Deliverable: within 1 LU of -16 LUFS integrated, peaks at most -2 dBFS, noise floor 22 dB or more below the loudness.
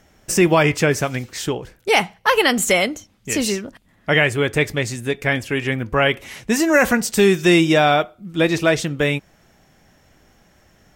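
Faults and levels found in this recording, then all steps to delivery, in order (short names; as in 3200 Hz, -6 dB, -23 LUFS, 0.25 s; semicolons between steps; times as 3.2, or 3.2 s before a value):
loudness -18.5 LUFS; peak -3.5 dBFS; loudness target -16.0 LUFS
-> gain +2.5 dB; limiter -2 dBFS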